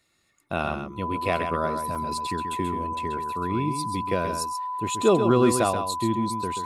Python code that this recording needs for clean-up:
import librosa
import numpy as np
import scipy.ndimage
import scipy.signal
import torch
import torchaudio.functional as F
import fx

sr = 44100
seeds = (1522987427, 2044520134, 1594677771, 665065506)

y = fx.notch(x, sr, hz=1000.0, q=30.0)
y = fx.fix_interpolate(y, sr, at_s=(1.95,), length_ms=5.0)
y = fx.fix_echo_inverse(y, sr, delay_ms=133, level_db=-7.5)